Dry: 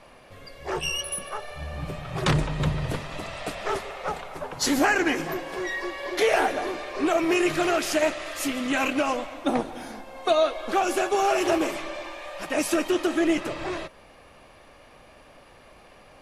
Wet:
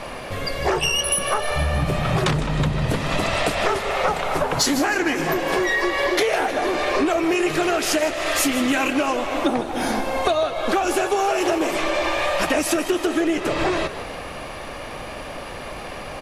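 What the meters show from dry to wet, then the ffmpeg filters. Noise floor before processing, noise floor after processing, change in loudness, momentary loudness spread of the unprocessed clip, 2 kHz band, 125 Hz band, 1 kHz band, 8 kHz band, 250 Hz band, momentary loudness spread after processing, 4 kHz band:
-52 dBFS, -33 dBFS, +5.0 dB, 13 LU, +5.5 dB, +6.0 dB, +5.0 dB, +7.0 dB, +4.0 dB, 13 LU, +7.0 dB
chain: -filter_complex "[0:a]acompressor=threshold=-35dB:ratio=16,asplit=7[a][b][c][d][e][f][g];[b]adelay=156,afreqshift=58,volume=-14dB[h];[c]adelay=312,afreqshift=116,volume=-19.2dB[i];[d]adelay=468,afreqshift=174,volume=-24.4dB[j];[e]adelay=624,afreqshift=232,volume=-29.6dB[k];[f]adelay=780,afreqshift=290,volume=-34.8dB[l];[g]adelay=936,afreqshift=348,volume=-40dB[m];[a][h][i][j][k][l][m]amix=inputs=7:normalize=0,aeval=exprs='0.376*sin(PI/2*5.01*val(0)/0.376)':c=same"

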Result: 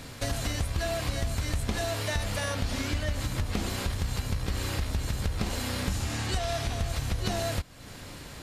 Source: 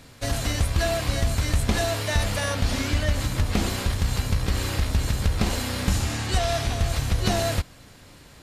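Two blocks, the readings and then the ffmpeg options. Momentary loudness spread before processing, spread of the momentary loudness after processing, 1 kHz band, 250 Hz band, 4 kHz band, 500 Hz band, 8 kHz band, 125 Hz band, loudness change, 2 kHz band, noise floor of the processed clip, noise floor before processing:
2 LU, 2 LU, -5.5 dB, -6.0 dB, -5.5 dB, -5.5 dB, -5.5 dB, -6.0 dB, -6.0 dB, -5.5 dB, -44 dBFS, -49 dBFS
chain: -af "acompressor=threshold=-38dB:ratio=2.5,volume=5.5dB"

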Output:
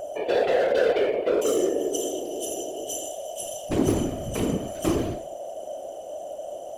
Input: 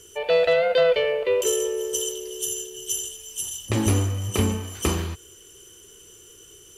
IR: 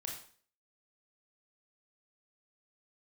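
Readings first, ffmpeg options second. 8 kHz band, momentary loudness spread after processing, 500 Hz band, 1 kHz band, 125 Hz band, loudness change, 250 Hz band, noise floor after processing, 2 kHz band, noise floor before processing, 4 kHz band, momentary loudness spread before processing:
-6.0 dB, 14 LU, -1.0 dB, +1.0 dB, -7.5 dB, -2.5 dB, +2.5 dB, -38 dBFS, -4.5 dB, -49 dBFS, -6.5 dB, 11 LU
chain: -filter_complex "[0:a]equalizer=f=330:w=1.1:g=11.5,flanger=delay=8:depth=8.3:regen=84:speed=0.9:shape=triangular,asplit=2[a][b];[1:a]atrim=start_sample=2205[c];[b][c]afir=irnorm=-1:irlink=0,volume=0dB[d];[a][d]amix=inputs=2:normalize=0,asoftclip=type=hard:threshold=-12.5dB,aeval=exprs='val(0)+0.0447*sin(2*PI*620*n/s)':c=same,afftfilt=real='hypot(re,im)*cos(2*PI*random(0))':imag='hypot(re,im)*sin(2*PI*random(1))':win_size=512:overlap=0.75"

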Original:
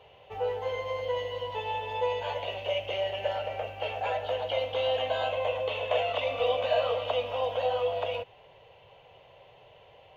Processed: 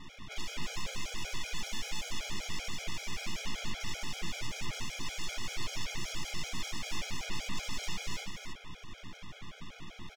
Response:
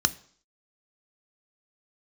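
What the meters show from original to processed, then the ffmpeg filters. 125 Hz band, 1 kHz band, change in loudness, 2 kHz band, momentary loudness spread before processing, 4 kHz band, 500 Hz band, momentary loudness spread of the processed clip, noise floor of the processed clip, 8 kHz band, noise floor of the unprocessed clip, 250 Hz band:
-1.0 dB, -15.0 dB, -9.5 dB, -3.5 dB, 6 LU, -3.0 dB, -24.5 dB, 11 LU, -53 dBFS, n/a, -56 dBFS, +7.5 dB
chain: -filter_complex "[0:a]acrusher=bits=3:mode=log:mix=0:aa=0.000001,lowshelf=f=290:g=-2,alimiter=limit=-22.5dB:level=0:latency=1:release=469,aeval=exprs='0.0112*(abs(mod(val(0)/0.0112+3,4)-2)-1)':c=same,lowpass=3.2k,aeval=exprs='abs(val(0))':c=same,aecho=1:1:71|298:0.501|0.562,asplit=2[a][b];[1:a]atrim=start_sample=2205,asetrate=57330,aresample=44100[c];[b][c]afir=irnorm=-1:irlink=0,volume=-13.5dB[d];[a][d]amix=inputs=2:normalize=0,afftfilt=real='re*gt(sin(2*PI*5.2*pts/sr)*(1-2*mod(floor(b*sr/1024/420),2)),0)':imag='im*gt(sin(2*PI*5.2*pts/sr)*(1-2*mod(floor(b*sr/1024/420),2)),0)':win_size=1024:overlap=0.75,volume=11.5dB"

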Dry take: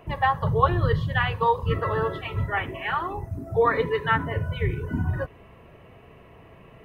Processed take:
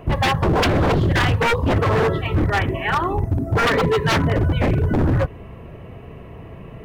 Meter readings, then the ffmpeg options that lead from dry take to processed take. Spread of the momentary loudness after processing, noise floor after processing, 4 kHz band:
21 LU, -39 dBFS, +10.5 dB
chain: -af "lowshelf=f=470:g=9.5,aeval=exprs='0.141*(abs(mod(val(0)/0.141+3,4)-2)-1)':c=same,volume=5dB"

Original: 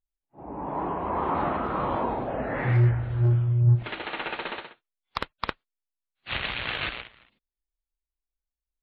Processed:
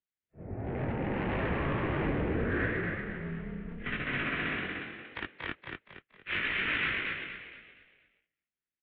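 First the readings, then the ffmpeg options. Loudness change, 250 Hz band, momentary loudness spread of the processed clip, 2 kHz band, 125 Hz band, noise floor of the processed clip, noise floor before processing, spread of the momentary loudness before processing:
-6.0 dB, -1.0 dB, 14 LU, +2.5 dB, -13.0 dB, under -85 dBFS, under -85 dBFS, 16 LU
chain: -filter_complex "[0:a]asplit=2[a][b];[b]asoftclip=type=tanh:threshold=-26.5dB,volume=-5dB[c];[a][c]amix=inputs=2:normalize=0,flanger=delay=18.5:depth=2.8:speed=1.2,volume=25.5dB,asoftclip=hard,volume=-25.5dB,equalizer=f=250:t=o:w=1:g=6,equalizer=f=500:t=o:w=1:g=6,equalizer=f=1k:t=o:w=1:g=-11,equalizer=f=2k:t=o:w=1:g=10,asplit=6[d][e][f][g][h][i];[e]adelay=234,afreqshift=36,volume=-4dB[j];[f]adelay=468,afreqshift=72,volume=-12.2dB[k];[g]adelay=702,afreqshift=108,volume=-20.4dB[l];[h]adelay=936,afreqshift=144,volume=-28.5dB[m];[i]adelay=1170,afreqshift=180,volume=-36.7dB[n];[d][j][k][l][m][n]amix=inputs=6:normalize=0,highpass=f=230:t=q:w=0.5412,highpass=f=230:t=q:w=1.307,lowpass=f=3.5k:t=q:w=0.5176,lowpass=f=3.5k:t=q:w=0.7071,lowpass=f=3.5k:t=q:w=1.932,afreqshift=-190,volume=-4.5dB"

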